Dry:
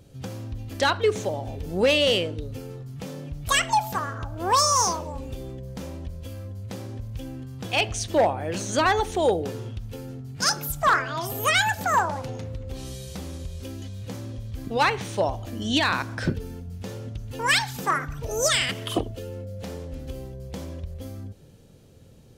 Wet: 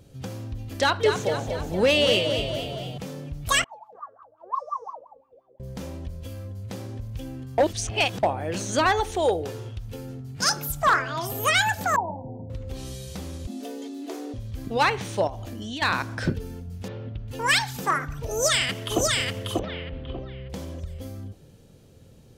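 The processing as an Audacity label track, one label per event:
0.770000	2.980000	echo with shifted repeats 233 ms, feedback 54%, per repeat +39 Hz, level −7 dB
3.640000	5.600000	LFO wah 5.7 Hz 460–1,200 Hz, Q 22
7.580000	8.230000	reverse
8.910000	9.880000	parametric band 210 Hz −8.5 dB 0.88 octaves
11.960000	12.500000	Chebyshev low-pass with heavy ripple 970 Hz, ripple 6 dB
13.470000	14.340000	frequency shifter +180 Hz
15.270000	15.820000	downward compressor, threshold −31 dBFS
16.880000	17.280000	low-pass filter 3,500 Hz 24 dB per octave
18.310000	19.040000	delay throw 590 ms, feedback 25%, level −2 dB
19.590000	20.500000	Butterworth low-pass 3,600 Hz

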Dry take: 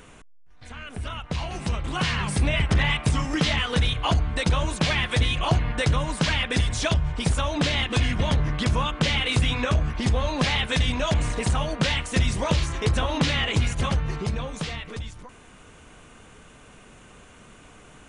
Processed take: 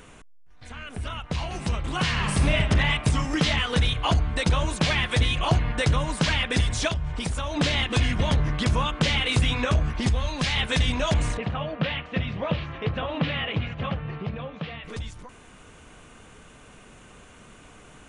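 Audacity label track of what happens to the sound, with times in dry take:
2.100000	2.550000	thrown reverb, RT60 1.4 s, DRR 3 dB
6.880000	7.570000	downward compressor 2.5 to 1, threshold −26 dBFS
10.090000	10.570000	parametric band 490 Hz −7 dB 2.9 octaves
11.370000	14.840000	loudspeaker in its box 120–2,900 Hz, peaks and dips at 250 Hz −4 dB, 370 Hz −7 dB, 930 Hz −6 dB, 1,500 Hz −4 dB, 2,100 Hz −4 dB

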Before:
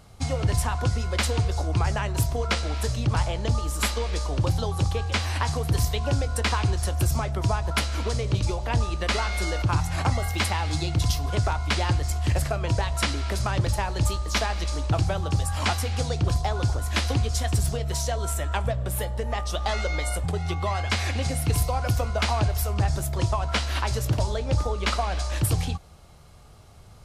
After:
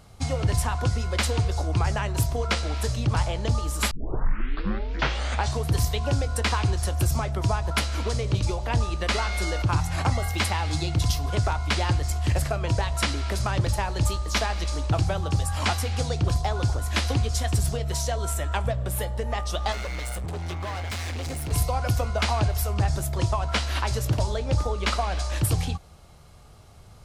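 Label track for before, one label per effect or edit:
3.910000	3.910000	tape start 1.76 s
19.720000	21.520000	hard clipping −29 dBFS

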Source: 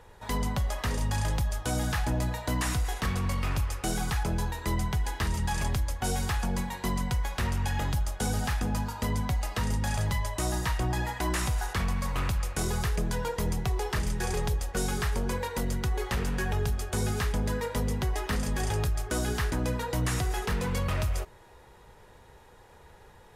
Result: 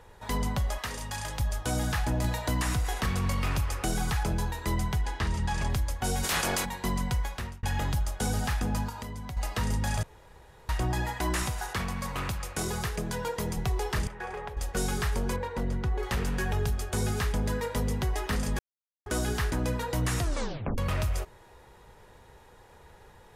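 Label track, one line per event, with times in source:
0.780000	1.400000	low-shelf EQ 490 Hz −11 dB
2.240000	4.330000	multiband upward and downward compressor depth 70%
5.010000	5.700000	high-frequency loss of the air 51 metres
6.230000	6.640000	ceiling on every frequency bin ceiling under each frame's peak by 28 dB
7.200000	7.630000	fade out
8.890000	9.370000	downward compressor, threshold −35 dBFS
10.030000	10.690000	fill with room tone
11.430000	13.570000	high-pass filter 110 Hz 6 dB per octave
14.070000	14.570000	three-way crossover with the lows and the highs turned down lows −16 dB, under 450 Hz, highs −22 dB, over 2,500 Hz
15.360000	16.030000	low-pass filter 1,600 Hz 6 dB per octave
18.590000	19.060000	silence
20.190000	20.190000	tape stop 0.59 s

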